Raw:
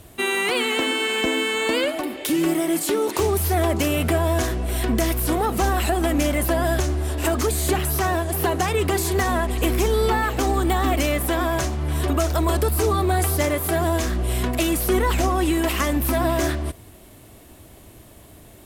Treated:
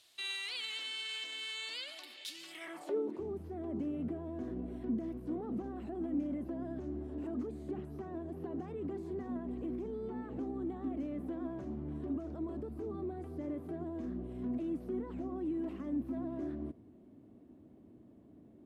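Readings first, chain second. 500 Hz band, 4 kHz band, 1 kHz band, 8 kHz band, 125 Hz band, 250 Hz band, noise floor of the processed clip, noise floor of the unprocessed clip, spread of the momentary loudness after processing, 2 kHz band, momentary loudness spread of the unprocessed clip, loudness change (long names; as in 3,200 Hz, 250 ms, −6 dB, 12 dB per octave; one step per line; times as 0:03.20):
−19.0 dB, below −15 dB, −27.0 dB, below −25 dB, −23.5 dB, −13.0 dB, −59 dBFS, −47 dBFS, 9 LU, −22.5 dB, 3 LU, −18.0 dB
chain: brickwall limiter −19 dBFS, peak gain reduction 9.5 dB
band-pass filter sweep 4,200 Hz → 250 Hz, 0:02.48–0:03.07
level −3.5 dB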